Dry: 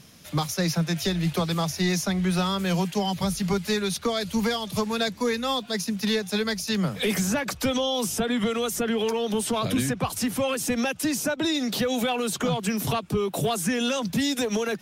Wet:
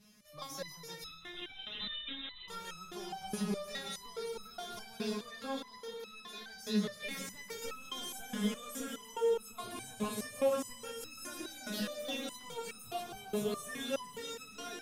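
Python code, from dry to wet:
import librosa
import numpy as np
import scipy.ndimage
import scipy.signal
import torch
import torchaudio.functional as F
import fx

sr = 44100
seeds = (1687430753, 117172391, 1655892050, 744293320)

y = fx.level_steps(x, sr, step_db=14, at=(5.22, 6.5))
y = fx.echo_heads(y, sr, ms=167, heads='first and second', feedback_pct=73, wet_db=-10.0)
y = fx.freq_invert(y, sr, carrier_hz=3800, at=(1.03, 2.48))
y = fx.rev_plate(y, sr, seeds[0], rt60_s=2.8, hf_ratio=0.7, predelay_ms=0, drr_db=7.5)
y = fx.resonator_held(y, sr, hz=4.8, low_hz=210.0, high_hz=1300.0)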